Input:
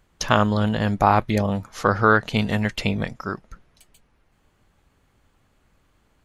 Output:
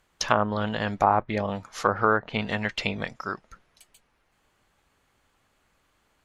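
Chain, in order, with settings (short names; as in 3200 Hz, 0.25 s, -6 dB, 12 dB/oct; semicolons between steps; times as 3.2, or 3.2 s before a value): low shelf 360 Hz -11 dB; treble ducked by the level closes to 1100 Hz, closed at -17.5 dBFS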